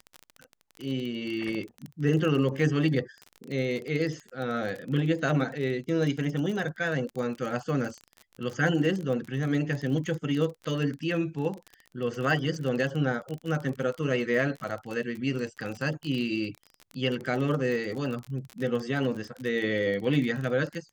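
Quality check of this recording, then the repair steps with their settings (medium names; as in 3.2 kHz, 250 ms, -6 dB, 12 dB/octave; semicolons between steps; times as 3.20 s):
crackle 29 per s -32 dBFS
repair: de-click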